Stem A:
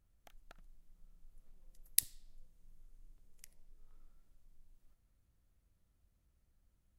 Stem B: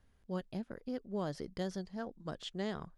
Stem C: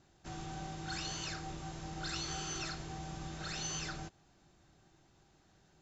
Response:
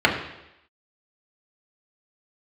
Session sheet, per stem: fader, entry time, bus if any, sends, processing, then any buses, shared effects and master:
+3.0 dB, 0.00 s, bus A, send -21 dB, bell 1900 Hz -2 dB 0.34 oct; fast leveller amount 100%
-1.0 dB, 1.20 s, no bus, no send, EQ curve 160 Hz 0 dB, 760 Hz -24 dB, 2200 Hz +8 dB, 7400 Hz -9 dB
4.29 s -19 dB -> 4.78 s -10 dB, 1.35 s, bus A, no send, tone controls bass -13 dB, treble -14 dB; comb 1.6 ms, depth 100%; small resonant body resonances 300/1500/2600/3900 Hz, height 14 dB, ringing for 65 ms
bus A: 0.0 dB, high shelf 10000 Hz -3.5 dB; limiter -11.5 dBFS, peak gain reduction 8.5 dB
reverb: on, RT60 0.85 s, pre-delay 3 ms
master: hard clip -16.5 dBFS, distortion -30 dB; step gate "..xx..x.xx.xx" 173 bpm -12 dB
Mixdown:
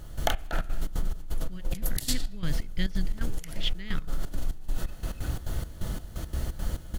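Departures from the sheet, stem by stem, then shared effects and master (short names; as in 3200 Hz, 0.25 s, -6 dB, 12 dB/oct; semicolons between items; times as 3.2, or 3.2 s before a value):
stem B -1.0 dB -> +10.5 dB; master: missing hard clip -16.5 dBFS, distortion -30 dB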